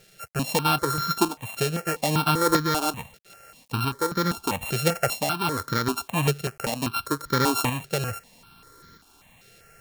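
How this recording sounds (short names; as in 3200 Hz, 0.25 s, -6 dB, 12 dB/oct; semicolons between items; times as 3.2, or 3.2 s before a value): a buzz of ramps at a fixed pitch in blocks of 32 samples; tremolo saw up 0.78 Hz, depth 50%; a quantiser's noise floor 10-bit, dither none; notches that jump at a steady rate 5.1 Hz 270–2700 Hz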